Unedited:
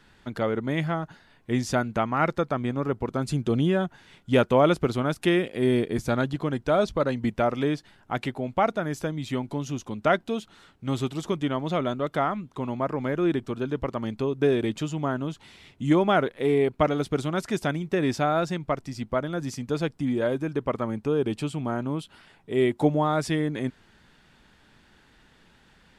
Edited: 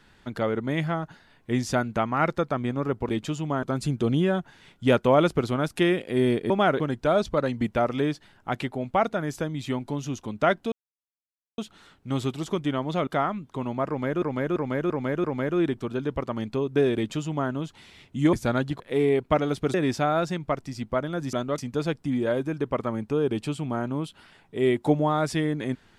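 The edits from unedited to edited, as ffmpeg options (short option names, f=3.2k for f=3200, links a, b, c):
-filter_complex "[0:a]asplit=16[a][b][c][d][e][f][g][h][i][j][k][l][m][n][o][p];[a]atrim=end=3.092[q];[b]atrim=start=14.618:end=15.162[r];[c]atrim=start=3.088:end=5.962[s];[d]atrim=start=15.988:end=16.292[t];[e]atrim=start=6.428:end=10.35,asetpts=PTS-STARTPTS,afade=t=out:st=3.918:d=0.004:c=hsin,apad=pad_dur=0.86[u];[f]atrim=start=10.35:end=11.842,asetpts=PTS-STARTPTS,afade=t=in:d=0.004:c=hsin[v];[g]atrim=start=12.088:end=13.242[w];[h]atrim=start=12.898:end=13.242[x];[i]atrim=start=12.898:end=13.242[y];[j]atrim=start=12.898:end=13.242[z];[k]atrim=start=12.898:end=15.992[aa];[l]atrim=start=5.958:end=6.432[ab];[m]atrim=start=16.288:end=17.232[ac];[n]atrim=start=17.938:end=19.532[ad];[o]atrim=start=11.838:end=12.092[ae];[p]atrim=start=19.528[af];[q][r]acrossfade=d=0.004:c1=hsin:c2=hsin[ag];[ag][s]acrossfade=d=0.004:c1=hsin:c2=hsin[ah];[ah][t]acrossfade=d=0.004:c1=hsin:c2=hsin[ai];[u][v]concat=n=2:v=0:a=1[aj];[ai][aj]acrossfade=d=0.004:c1=hsin:c2=hsin[ak];[ak][w]acrossfade=d=0.004:c1=hsin:c2=hsin[al];[al][x]acrossfade=d=0.004:c1=hsin:c2=hsin[am];[am][y]acrossfade=d=0.004:c1=hsin:c2=hsin[an];[an][z]acrossfade=d=0.004:c1=hsin:c2=hsin[ao];[ao][aa]acrossfade=d=0.004:c1=hsin:c2=hsin[ap];[ap][ab]acrossfade=d=0.004:c1=hsin:c2=hsin[aq];[aq][ac]acrossfade=d=0.004:c1=hsin:c2=hsin[ar];[ar][ad]acrossfade=d=0.004:c1=hsin:c2=hsin[as];[as][ae]acrossfade=d=0.004:c1=hsin:c2=hsin[at];[at][af]acrossfade=d=0.004:c1=hsin:c2=hsin"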